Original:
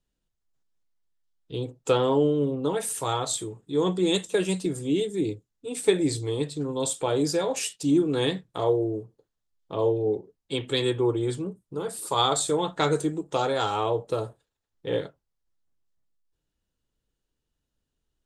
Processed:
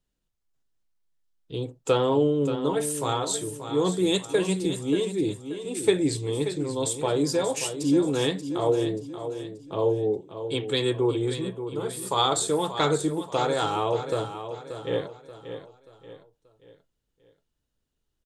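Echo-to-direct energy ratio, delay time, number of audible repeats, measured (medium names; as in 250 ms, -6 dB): -9.5 dB, 582 ms, 4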